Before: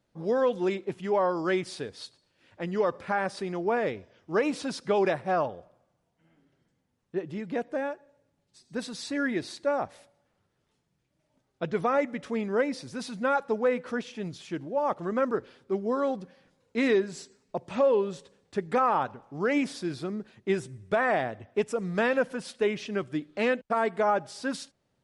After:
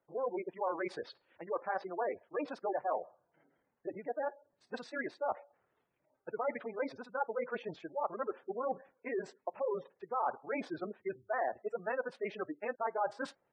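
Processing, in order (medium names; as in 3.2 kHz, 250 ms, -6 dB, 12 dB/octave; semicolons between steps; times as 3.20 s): three-band isolator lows -15 dB, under 360 Hz, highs -15 dB, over 2.7 kHz; granular stretch 0.54×, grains 54 ms; spectral gate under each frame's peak -20 dB strong; reverse; compression 4:1, threshold -40 dBFS, peak gain reduction 15.5 dB; reverse; dynamic bell 820 Hz, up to +5 dB, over -55 dBFS, Q 1.4; trim +3 dB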